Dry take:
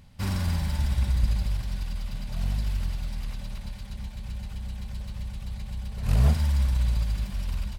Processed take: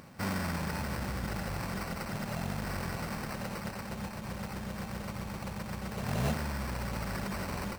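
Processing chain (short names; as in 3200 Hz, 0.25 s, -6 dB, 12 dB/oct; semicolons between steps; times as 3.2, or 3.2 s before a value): HPF 200 Hz 12 dB/oct; in parallel at +1 dB: negative-ratio compressor -44 dBFS, ratio -1; on the sum: sample-rate reducer 3400 Hz, jitter 0%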